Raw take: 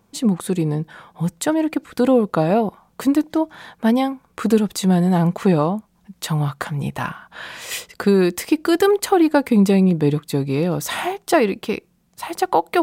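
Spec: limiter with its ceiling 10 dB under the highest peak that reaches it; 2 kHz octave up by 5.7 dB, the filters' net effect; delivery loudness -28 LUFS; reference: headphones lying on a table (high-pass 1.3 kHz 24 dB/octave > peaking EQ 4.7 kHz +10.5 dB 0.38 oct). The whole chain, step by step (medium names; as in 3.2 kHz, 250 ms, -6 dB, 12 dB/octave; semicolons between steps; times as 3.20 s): peaking EQ 2 kHz +7.5 dB; peak limiter -12.5 dBFS; high-pass 1.3 kHz 24 dB/octave; peaking EQ 4.7 kHz +10.5 dB 0.38 oct; trim +0.5 dB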